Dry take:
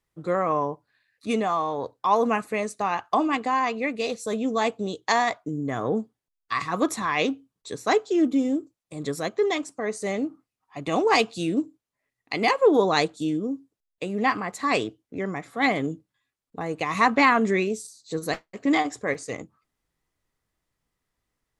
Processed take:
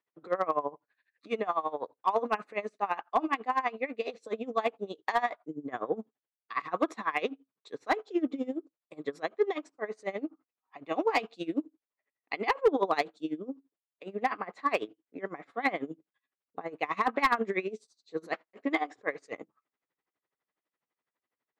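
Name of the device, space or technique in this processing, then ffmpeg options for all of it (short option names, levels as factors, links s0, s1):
helicopter radio: -af "highpass=330,lowpass=2700,aeval=exprs='val(0)*pow(10,-20*(0.5-0.5*cos(2*PI*12*n/s))/20)':c=same,asoftclip=type=hard:threshold=0.158"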